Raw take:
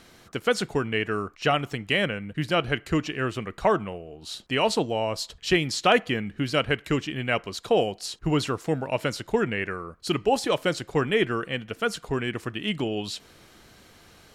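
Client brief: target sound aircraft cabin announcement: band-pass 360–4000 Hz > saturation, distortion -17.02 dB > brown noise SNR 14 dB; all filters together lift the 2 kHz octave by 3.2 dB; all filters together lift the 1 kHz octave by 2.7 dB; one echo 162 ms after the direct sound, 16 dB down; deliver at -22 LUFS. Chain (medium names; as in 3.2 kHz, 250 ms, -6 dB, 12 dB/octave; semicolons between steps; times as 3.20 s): band-pass 360–4000 Hz; peaking EQ 1 kHz +3 dB; peaking EQ 2 kHz +3.5 dB; delay 162 ms -16 dB; saturation -12 dBFS; brown noise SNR 14 dB; trim +5 dB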